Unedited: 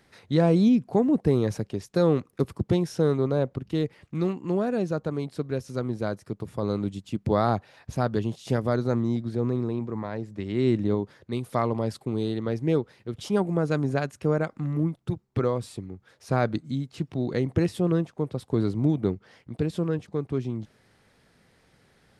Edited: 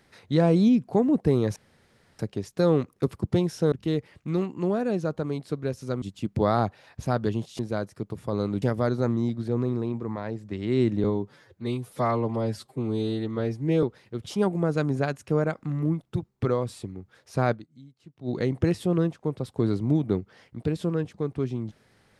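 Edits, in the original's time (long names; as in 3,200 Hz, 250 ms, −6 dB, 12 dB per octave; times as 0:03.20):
0:01.56: splice in room tone 0.63 s
0:03.09–0:03.59: remove
0:05.89–0:06.92: move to 0:08.49
0:10.91–0:12.77: time-stretch 1.5×
0:16.46–0:17.23: duck −19.5 dB, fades 0.38 s exponential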